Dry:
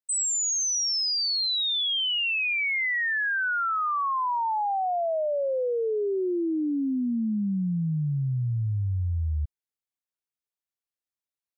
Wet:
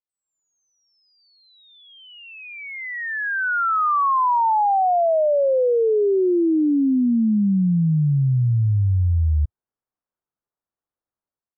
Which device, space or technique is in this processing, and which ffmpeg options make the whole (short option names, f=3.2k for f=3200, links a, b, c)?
action camera in a waterproof case: -af "lowpass=f=1.4k:w=0.5412,lowpass=f=1.4k:w=1.3066,dynaudnorm=f=120:g=5:m=11.5dB,volume=-3dB" -ar 22050 -c:a aac -b:a 96k